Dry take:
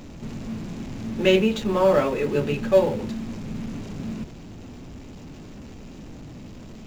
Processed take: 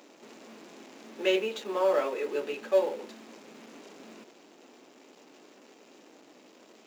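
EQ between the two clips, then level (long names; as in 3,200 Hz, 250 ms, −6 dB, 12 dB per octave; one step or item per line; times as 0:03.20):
high-pass filter 340 Hz 24 dB per octave
−6.5 dB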